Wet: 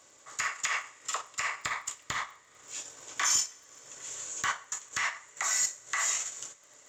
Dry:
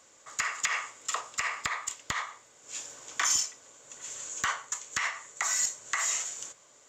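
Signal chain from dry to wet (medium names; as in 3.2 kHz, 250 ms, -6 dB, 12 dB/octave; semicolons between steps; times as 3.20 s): two-slope reverb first 0.39 s, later 3.1 s, from -20 dB, DRR 6.5 dB; transient shaper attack -3 dB, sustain -8 dB; crackle 16 per s -45 dBFS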